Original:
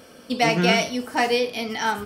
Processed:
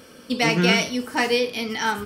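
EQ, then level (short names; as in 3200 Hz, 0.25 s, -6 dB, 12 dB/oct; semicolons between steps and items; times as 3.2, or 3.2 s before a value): bell 700 Hz -7.5 dB 0.46 oct; +1.5 dB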